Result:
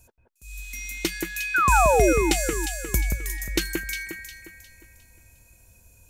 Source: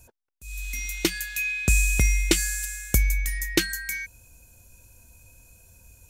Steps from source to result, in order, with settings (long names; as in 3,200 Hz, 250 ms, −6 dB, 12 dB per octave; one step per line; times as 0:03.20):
sound drawn into the spectrogram fall, 0:01.54–0:02.13, 300–1,600 Hz −17 dBFS
delay that swaps between a low-pass and a high-pass 178 ms, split 2,400 Hz, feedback 59%, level −3 dB
level −3 dB